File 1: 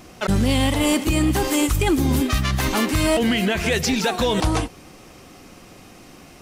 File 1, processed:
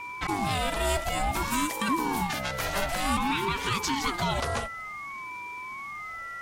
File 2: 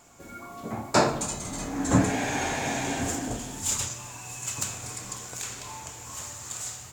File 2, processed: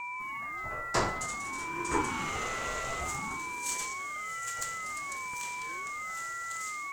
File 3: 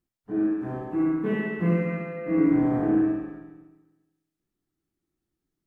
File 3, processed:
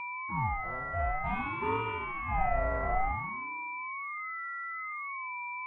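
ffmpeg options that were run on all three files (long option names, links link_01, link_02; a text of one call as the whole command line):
ffmpeg -i in.wav -af "highpass=160,aeval=exprs='val(0)+0.0398*sin(2*PI*1600*n/s)':channel_layout=same,afreqshift=64,aeval=exprs='val(0)*sin(2*PI*490*n/s+490*0.4/0.55*sin(2*PI*0.55*n/s))':channel_layout=same,volume=-4.5dB" out.wav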